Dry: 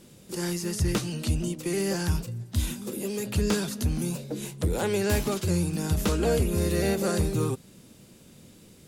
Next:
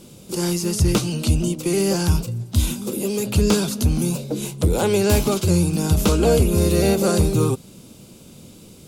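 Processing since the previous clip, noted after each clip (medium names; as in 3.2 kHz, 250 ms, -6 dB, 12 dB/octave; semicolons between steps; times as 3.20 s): peaking EQ 1.8 kHz -11 dB 0.35 oct; trim +8 dB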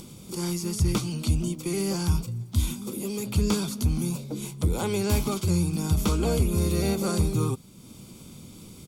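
comb 0.9 ms, depth 40%; upward compressor, threshold -29 dBFS; word length cut 10-bit, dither none; trim -8 dB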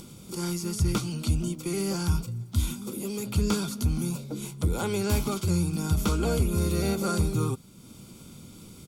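small resonant body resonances 1.4 kHz, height 10 dB; trim -1.5 dB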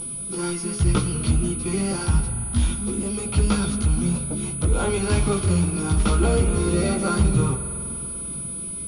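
chorus voices 6, 0.25 Hz, delay 18 ms, depth 4.4 ms; spring tank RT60 3.7 s, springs 47 ms, chirp 35 ms, DRR 9 dB; class-D stage that switches slowly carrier 9.9 kHz; trim +8.5 dB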